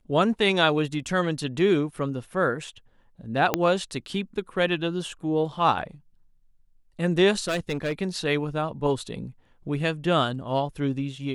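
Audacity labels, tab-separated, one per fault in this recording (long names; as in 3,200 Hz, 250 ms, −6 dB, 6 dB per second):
3.540000	3.540000	click −6 dBFS
7.480000	7.920000	clipping −22 dBFS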